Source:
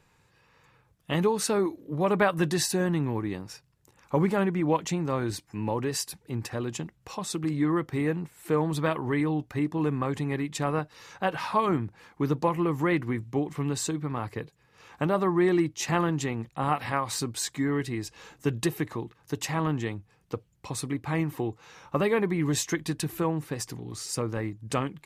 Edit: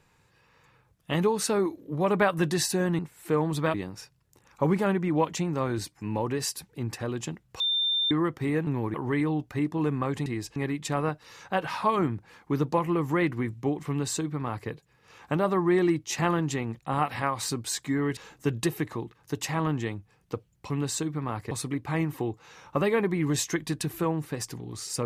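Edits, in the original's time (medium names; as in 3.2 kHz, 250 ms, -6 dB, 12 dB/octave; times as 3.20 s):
2.99–3.26 s: swap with 8.19–8.94 s
7.12–7.63 s: bleep 3.59 kHz -23 dBFS
13.58–14.39 s: copy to 20.70 s
17.87–18.17 s: move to 10.26 s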